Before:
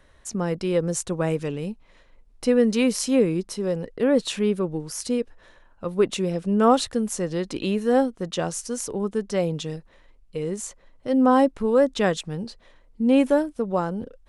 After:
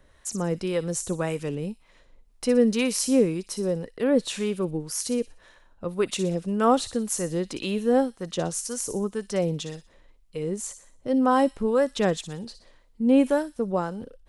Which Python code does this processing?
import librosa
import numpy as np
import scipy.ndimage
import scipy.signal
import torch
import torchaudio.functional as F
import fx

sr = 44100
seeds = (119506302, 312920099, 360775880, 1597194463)

y = fx.high_shelf(x, sr, hz=7500.0, db=5.5)
y = fx.harmonic_tremolo(y, sr, hz=1.9, depth_pct=50, crossover_hz=700.0)
y = fx.echo_wet_highpass(y, sr, ms=60, feedback_pct=41, hz=3800.0, wet_db=-8.5)